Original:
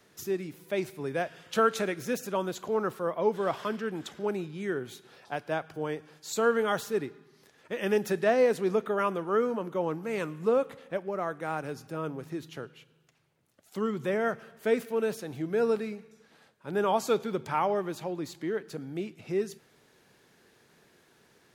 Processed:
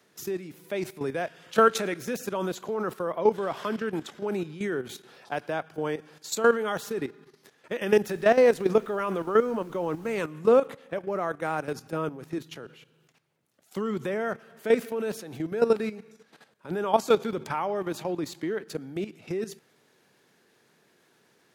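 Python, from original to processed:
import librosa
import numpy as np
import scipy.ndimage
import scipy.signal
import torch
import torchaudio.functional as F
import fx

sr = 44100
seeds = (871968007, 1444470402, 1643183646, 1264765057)

y = scipy.signal.sosfilt(scipy.signal.butter(2, 130.0, 'highpass', fs=sr, output='sos'), x)
y = fx.level_steps(y, sr, step_db=12)
y = fx.dmg_noise_colour(y, sr, seeds[0], colour='pink', level_db=-67.0, at=(8.05, 10.22), fade=0.02)
y = y * 10.0 ** (7.5 / 20.0)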